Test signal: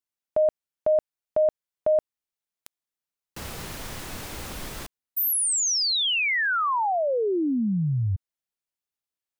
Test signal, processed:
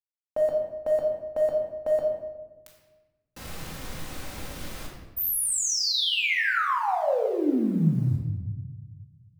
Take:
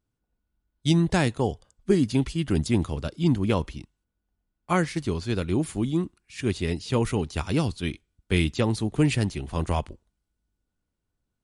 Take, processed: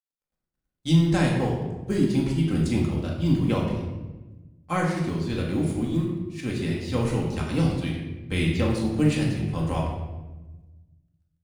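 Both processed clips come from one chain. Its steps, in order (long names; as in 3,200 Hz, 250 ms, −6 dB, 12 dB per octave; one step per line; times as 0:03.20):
mu-law and A-law mismatch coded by A
rectangular room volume 670 cubic metres, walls mixed, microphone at 2.1 metres
level −5 dB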